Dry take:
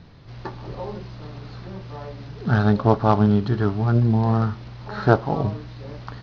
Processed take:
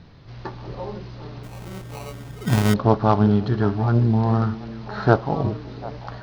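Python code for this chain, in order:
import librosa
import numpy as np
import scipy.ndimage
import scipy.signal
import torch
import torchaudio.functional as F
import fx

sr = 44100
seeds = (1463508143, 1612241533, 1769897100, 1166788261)

y = fx.echo_stepped(x, sr, ms=372, hz=300.0, octaves=1.4, feedback_pct=70, wet_db=-10.5)
y = fx.sample_hold(y, sr, seeds[0], rate_hz=1700.0, jitter_pct=0, at=(1.43, 2.74))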